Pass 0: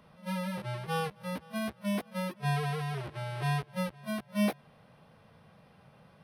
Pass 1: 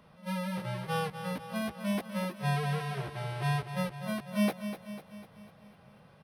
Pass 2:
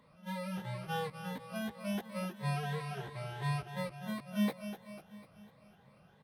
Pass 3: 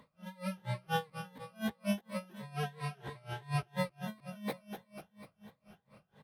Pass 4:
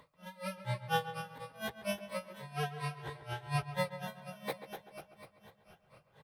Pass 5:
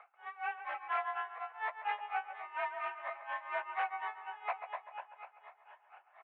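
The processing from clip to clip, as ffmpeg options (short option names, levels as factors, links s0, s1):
-af "aecho=1:1:248|496|744|992|1240|1488:0.316|0.171|0.0922|0.0498|0.0269|0.0145"
-af "afftfilt=real='re*pow(10,9/40*sin(2*PI*(1*log(max(b,1)*sr/1024/100)/log(2)-(2.9)*(pts-256)/sr)))':imag='im*pow(10,9/40*sin(2*PI*(1*log(max(b,1)*sr/1024/100)/log(2)-(2.9)*(pts-256)/sr)))':win_size=1024:overlap=0.75,volume=0.501"
-af "aeval=exprs='val(0)*pow(10,-27*(0.5-0.5*cos(2*PI*4.2*n/s))/20)':c=same,volume=2"
-filter_complex "[0:a]equalizer=f=220:w=2.6:g=-13.5,asplit=2[s0][s1];[s1]adelay=137,lowpass=f=2600:p=1,volume=0.266,asplit=2[s2][s3];[s3]adelay=137,lowpass=f=2600:p=1,volume=0.43,asplit=2[s4][s5];[s5]adelay=137,lowpass=f=2600:p=1,volume=0.43,asplit=2[s6][s7];[s7]adelay=137,lowpass=f=2600:p=1,volume=0.43[s8];[s2][s4][s6][s8]amix=inputs=4:normalize=0[s9];[s0][s9]amix=inputs=2:normalize=0,volume=1.26"
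-af "aeval=exprs='0.0299*(abs(mod(val(0)/0.0299+3,4)-2)-1)':c=same,highpass=f=370:t=q:w=0.5412,highpass=f=370:t=q:w=1.307,lowpass=f=2300:t=q:w=0.5176,lowpass=f=2300:t=q:w=0.7071,lowpass=f=2300:t=q:w=1.932,afreqshift=220,volume=1.78"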